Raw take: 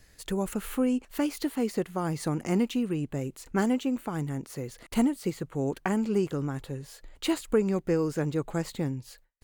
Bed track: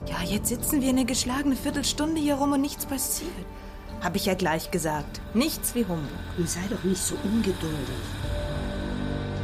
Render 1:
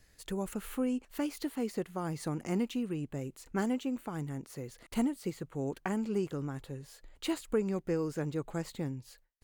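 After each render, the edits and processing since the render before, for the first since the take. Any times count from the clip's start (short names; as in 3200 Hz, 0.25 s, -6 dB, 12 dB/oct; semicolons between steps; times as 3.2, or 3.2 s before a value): gain -6 dB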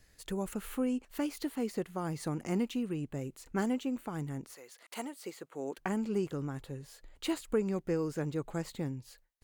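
4.53–5.77 HPF 820 Hz -> 300 Hz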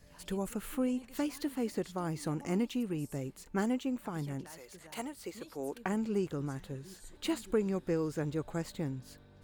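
add bed track -28 dB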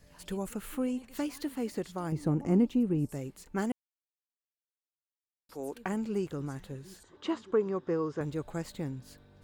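2.12–3.09 tilt shelf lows +8 dB; 3.72–5.49 mute; 7.03–8.21 speaker cabinet 110–5400 Hz, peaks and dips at 200 Hz -4 dB, 410 Hz +5 dB, 1100 Hz +9 dB, 2400 Hz -7 dB, 4300 Hz -8 dB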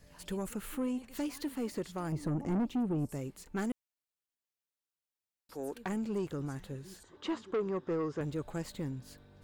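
soft clip -27.5 dBFS, distortion -10 dB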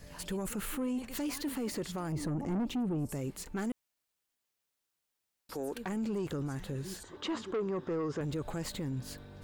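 in parallel at 0 dB: negative-ratio compressor -39 dBFS; on the sum: limiter -29 dBFS, peak gain reduction 7 dB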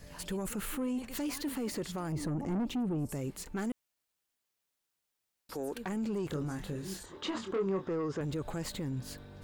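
6.27–7.82 doubler 26 ms -6.5 dB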